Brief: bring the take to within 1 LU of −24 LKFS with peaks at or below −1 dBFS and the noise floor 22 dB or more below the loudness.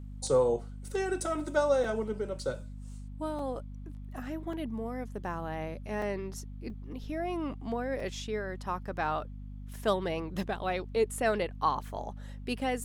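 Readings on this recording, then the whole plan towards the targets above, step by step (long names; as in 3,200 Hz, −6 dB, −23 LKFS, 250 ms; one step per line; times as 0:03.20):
number of dropouts 7; longest dropout 2.8 ms; mains hum 50 Hz; hum harmonics up to 250 Hz; level of the hum −40 dBFS; integrated loudness −33.5 LKFS; sample peak −14.5 dBFS; target loudness −24.0 LKFS
→ repair the gap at 0:00.27/0:01.84/0:03.39/0:04.53/0:06.02/0:06.70/0:08.00, 2.8 ms
hum removal 50 Hz, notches 5
level +9.5 dB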